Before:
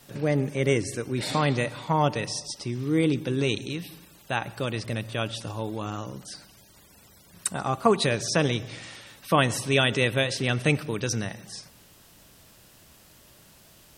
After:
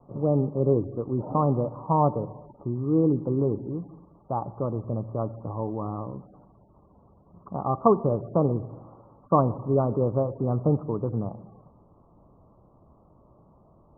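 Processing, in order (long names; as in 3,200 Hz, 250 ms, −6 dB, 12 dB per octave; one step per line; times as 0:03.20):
Butterworth low-pass 1,200 Hz 96 dB per octave
level +1.5 dB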